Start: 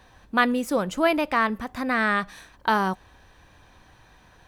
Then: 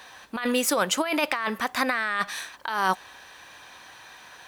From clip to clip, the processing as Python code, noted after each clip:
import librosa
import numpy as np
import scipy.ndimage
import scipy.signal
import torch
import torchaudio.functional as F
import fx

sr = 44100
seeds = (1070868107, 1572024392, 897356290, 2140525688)

y = fx.highpass(x, sr, hz=1400.0, slope=6)
y = fx.over_compress(y, sr, threshold_db=-33.0, ratio=-1.0)
y = y * 10.0 ** (8.0 / 20.0)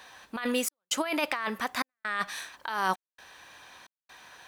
y = fx.step_gate(x, sr, bpm=66, pattern='xxx.xxxx.xxxx.', floor_db=-60.0, edge_ms=4.5)
y = y * 10.0 ** (-4.0 / 20.0)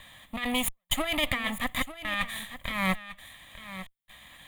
y = fx.lower_of_two(x, sr, delay_ms=0.57)
y = fx.fixed_phaser(y, sr, hz=1500.0, stages=6)
y = y + 10.0 ** (-13.5 / 20.0) * np.pad(y, (int(897 * sr / 1000.0), 0))[:len(y)]
y = y * 10.0 ** (6.5 / 20.0)